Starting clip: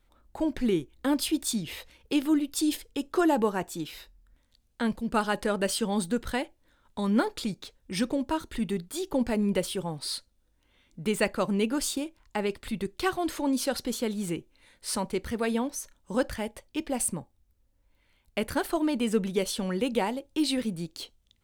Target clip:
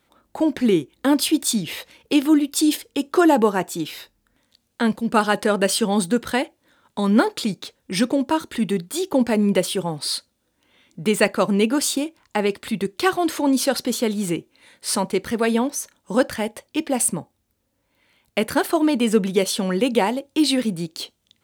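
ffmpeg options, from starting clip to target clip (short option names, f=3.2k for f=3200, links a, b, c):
-af "highpass=140,volume=8.5dB"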